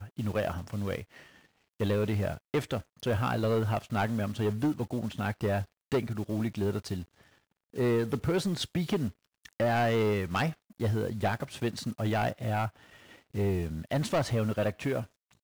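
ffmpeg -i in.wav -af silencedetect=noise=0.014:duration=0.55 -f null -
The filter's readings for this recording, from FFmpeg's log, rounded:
silence_start: 1.03
silence_end: 1.80 | silence_duration: 0.78
silence_start: 7.03
silence_end: 7.76 | silence_duration: 0.74
silence_start: 12.68
silence_end: 13.35 | silence_duration: 0.66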